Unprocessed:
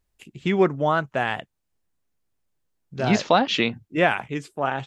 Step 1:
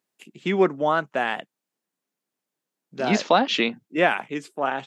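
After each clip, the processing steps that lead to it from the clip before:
high-pass filter 190 Hz 24 dB per octave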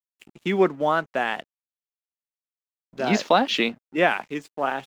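dead-zone distortion −49 dBFS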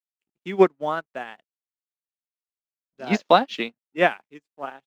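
expander for the loud parts 2.5 to 1, over −40 dBFS
level +5 dB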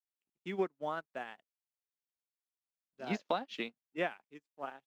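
downward compressor 3 to 1, threshold −24 dBFS, peak gain reduction 11.5 dB
level −8.5 dB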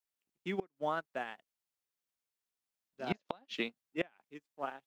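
gate with flip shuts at −24 dBFS, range −26 dB
level +3 dB

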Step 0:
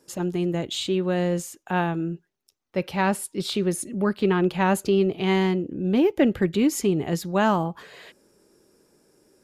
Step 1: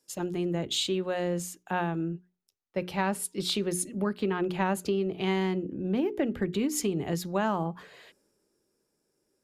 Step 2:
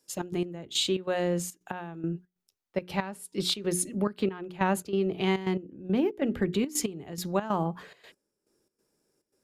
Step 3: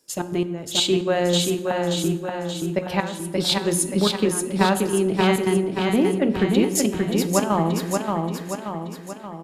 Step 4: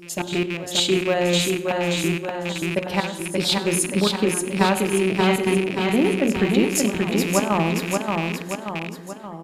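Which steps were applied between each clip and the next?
mains-hum notches 60/120/180/240/300/360/420 Hz; downward compressor 6 to 1, threshold −23 dBFS, peak gain reduction 8.5 dB; multiband upward and downward expander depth 40%; level −1.5 dB
gate pattern "xx.x...xx.xx" 140 BPM −12 dB; level +2 dB
on a send: repeating echo 579 ms, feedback 52%, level −3.5 dB; on the sum: dense smooth reverb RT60 1.3 s, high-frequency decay 0.55×, DRR 11 dB; level +6.5 dB
loose part that buzzes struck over −30 dBFS, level −18 dBFS; backwards echo 480 ms −15.5 dB

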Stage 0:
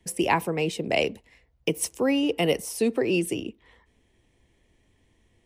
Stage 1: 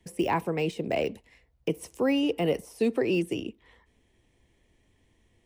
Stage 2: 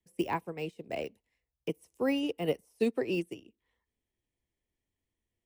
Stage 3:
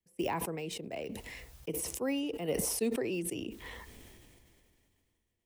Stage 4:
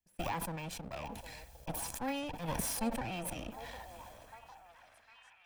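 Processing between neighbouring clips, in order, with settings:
de-essing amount 100%; level −1.5 dB
high-shelf EQ 7,100 Hz +7.5 dB; expander for the loud parts 2.5 to 1, over −35 dBFS; level −1.5 dB
level that may fall only so fast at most 23 dB per second; level −4.5 dB
lower of the sound and its delayed copy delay 1.2 ms; echo through a band-pass that steps 754 ms, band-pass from 630 Hz, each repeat 0.7 octaves, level −8 dB; level −1.5 dB

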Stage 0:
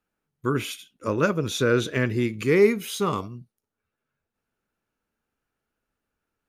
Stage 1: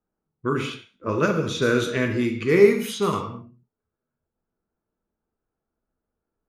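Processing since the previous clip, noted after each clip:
reverb whose tail is shaped and stops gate 250 ms falling, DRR 3.5 dB
low-pass that shuts in the quiet parts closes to 900 Hz, open at −18 dBFS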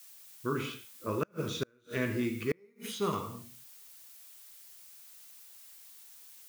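background noise blue −45 dBFS
gate with flip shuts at −10 dBFS, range −37 dB
level −8.5 dB

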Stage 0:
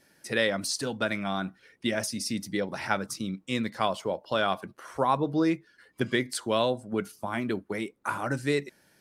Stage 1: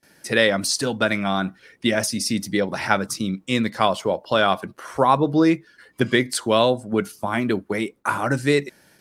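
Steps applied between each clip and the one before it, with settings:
noise gate with hold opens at −53 dBFS
level +8 dB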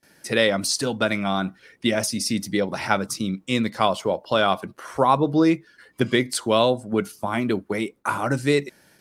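dynamic equaliser 1,700 Hz, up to −5 dB, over −40 dBFS, Q 4.6
level −1 dB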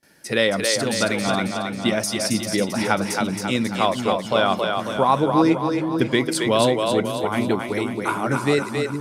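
echo with a time of its own for lows and highs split 310 Hz, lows 453 ms, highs 271 ms, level −4 dB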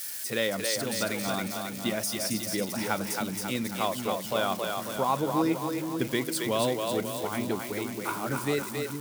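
spike at every zero crossing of −20.5 dBFS
level −9 dB

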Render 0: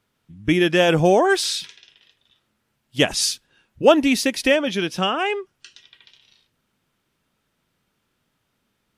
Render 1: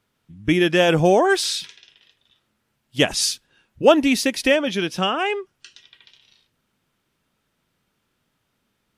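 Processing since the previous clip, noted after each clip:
no processing that can be heard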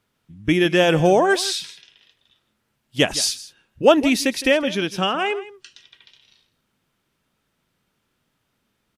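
single-tap delay 161 ms −17 dB

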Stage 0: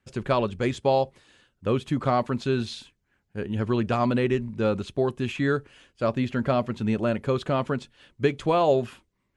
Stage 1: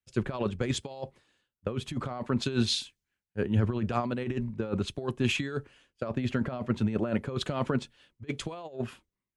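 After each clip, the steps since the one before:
compressor whose output falls as the input rises −26 dBFS, ratio −0.5
multiband upward and downward expander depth 100%
level −2.5 dB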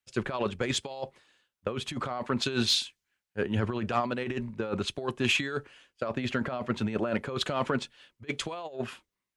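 mid-hump overdrive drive 10 dB, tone 7,900 Hz, clips at −13 dBFS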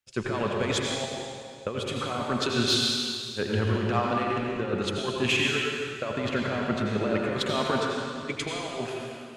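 convolution reverb RT60 2.2 s, pre-delay 72 ms, DRR −1.5 dB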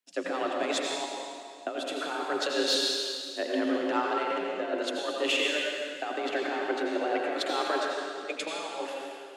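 frequency shifter +160 Hz
level −2.5 dB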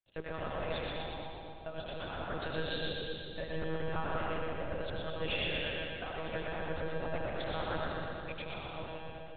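one-pitch LPC vocoder at 8 kHz 160 Hz
echo with a time of its own for lows and highs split 530 Hz, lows 260 ms, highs 120 ms, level −3.5 dB
level −8.5 dB

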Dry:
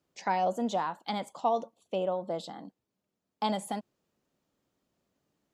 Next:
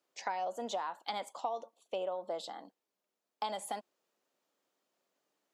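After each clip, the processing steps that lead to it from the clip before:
high-pass filter 460 Hz 12 dB per octave
downward compressor 6 to 1, threshold −33 dBFS, peak gain reduction 10 dB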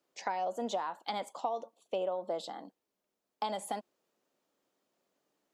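low-shelf EQ 440 Hz +7.5 dB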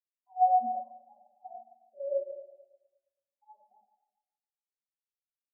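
convolution reverb RT60 4.2 s, pre-delay 4 ms, DRR −6 dB
every bin expanded away from the loudest bin 4 to 1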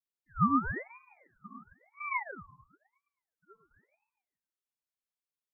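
tape wow and flutter 100 cents
ring modulator whose carrier an LFO sweeps 1,100 Hz, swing 60%, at 0.98 Hz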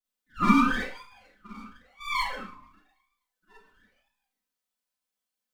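lower of the sound and its delayed copy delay 4 ms
four-comb reverb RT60 0.36 s, combs from 29 ms, DRR −7 dB

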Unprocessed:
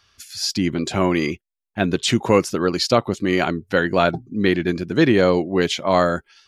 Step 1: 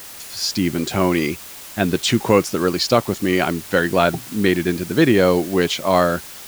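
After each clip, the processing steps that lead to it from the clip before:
background noise white −38 dBFS
level +1 dB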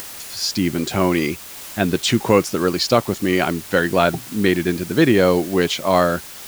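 upward compression, threshold −29 dBFS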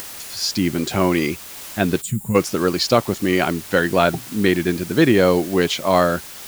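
gain on a spectral selection 0:02.02–0:02.35, 220–6,800 Hz −21 dB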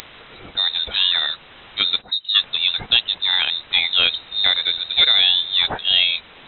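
voice inversion scrambler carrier 3,900 Hz
level −1 dB

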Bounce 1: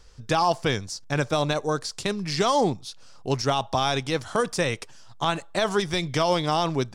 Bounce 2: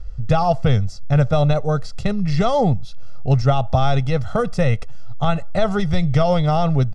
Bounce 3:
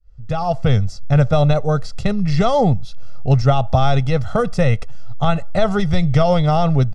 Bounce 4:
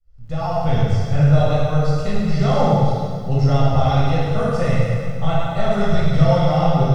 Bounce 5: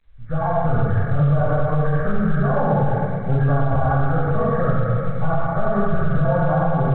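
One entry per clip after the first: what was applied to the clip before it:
RIAA equalisation playback; comb filter 1.5 ms, depth 75%
fade in at the beginning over 0.78 s; level +2 dB
soft clipping −3.5 dBFS, distortion −25 dB; dense smooth reverb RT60 2 s, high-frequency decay 0.85×, DRR −8.5 dB; feedback echo at a low word length 105 ms, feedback 35%, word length 7 bits, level −9 dB; level −10 dB
hearing-aid frequency compression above 1,100 Hz 4 to 1; brickwall limiter −11.5 dBFS, peak gain reduction 9.5 dB; level +1.5 dB; A-law companding 64 kbit/s 8,000 Hz

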